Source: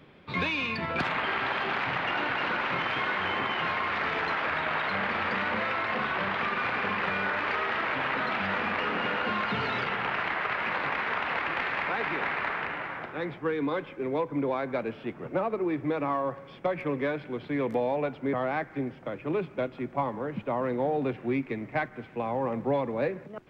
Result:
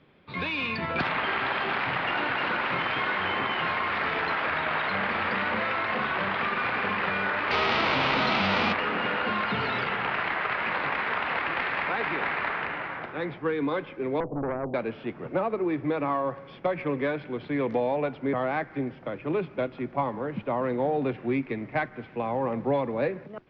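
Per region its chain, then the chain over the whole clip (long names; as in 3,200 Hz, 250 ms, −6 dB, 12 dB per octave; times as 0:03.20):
0:07.50–0:08.72: spectral envelope flattened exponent 0.6 + parametric band 1,700 Hz −6.5 dB 0.36 octaves + envelope flattener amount 70%
0:14.20–0:14.74: Butterworth low-pass 700 Hz 72 dB per octave + tube saturation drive 22 dB, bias 0.4 + every bin compressed towards the loudest bin 2 to 1
whole clip: Butterworth low-pass 5,200 Hz 36 dB per octave; automatic gain control gain up to 7 dB; level −5.5 dB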